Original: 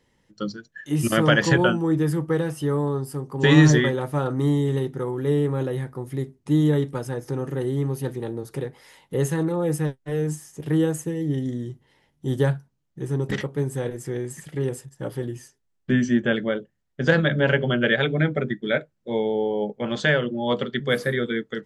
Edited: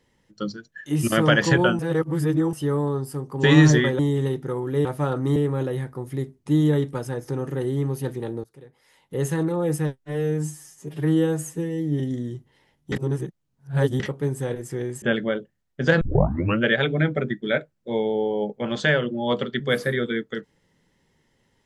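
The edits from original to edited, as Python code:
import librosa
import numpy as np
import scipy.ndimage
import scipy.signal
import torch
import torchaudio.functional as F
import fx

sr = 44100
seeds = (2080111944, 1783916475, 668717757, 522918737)

y = fx.edit(x, sr, fx.reverse_span(start_s=1.79, length_s=0.74),
    fx.move(start_s=3.99, length_s=0.51, to_s=5.36),
    fx.fade_in_from(start_s=8.44, length_s=0.89, curve='qua', floor_db=-19.5),
    fx.stretch_span(start_s=10.05, length_s=1.3, factor=1.5),
    fx.reverse_span(start_s=12.27, length_s=1.08),
    fx.cut(start_s=14.37, length_s=1.85),
    fx.tape_start(start_s=17.21, length_s=0.61), tone=tone)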